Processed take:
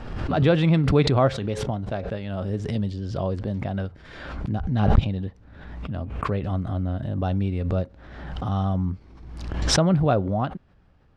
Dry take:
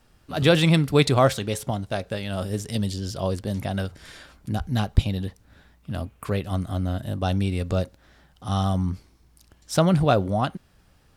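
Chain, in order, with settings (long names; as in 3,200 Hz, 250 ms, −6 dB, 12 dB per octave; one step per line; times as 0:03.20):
head-to-tape spacing loss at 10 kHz 30 dB
background raised ahead of every attack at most 44 dB per second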